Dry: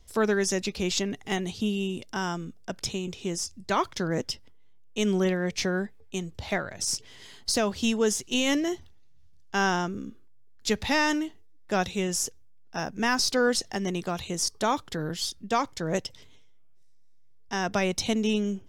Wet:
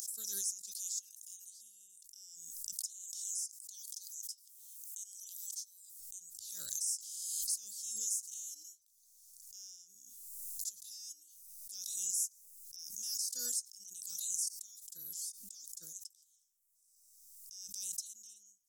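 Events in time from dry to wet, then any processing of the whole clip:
0.81–1.46 HPF 1000 Hz
2.73–6 steep high-pass 2800 Hz 96 dB/oct
10.97–12.04 notch 7300 Hz
whole clip: upward compressor, threshold -29 dBFS; inverse Chebyshev high-pass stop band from 2300 Hz, stop band 60 dB; backwards sustainer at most 31 dB/s; gain -2 dB

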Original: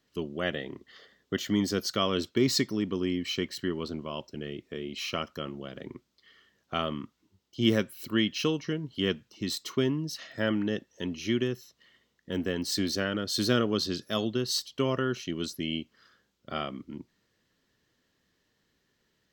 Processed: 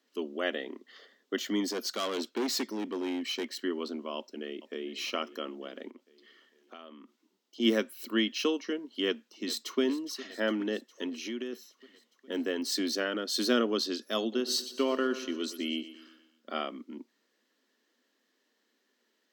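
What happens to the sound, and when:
1.68–3.45 hard clip -27 dBFS
4.16–4.9 echo throw 0.45 s, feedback 55%, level -15.5 dB
5.9–7.6 compressor, threshold -44 dBFS
9.06–9.81 echo throw 0.41 s, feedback 70%, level -15.5 dB
11.09–11.53 compressor 5:1, threshold -31 dBFS
14.2–16.52 feedback echo 0.119 s, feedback 51%, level -14 dB
whole clip: elliptic high-pass 230 Hz, stop band 40 dB

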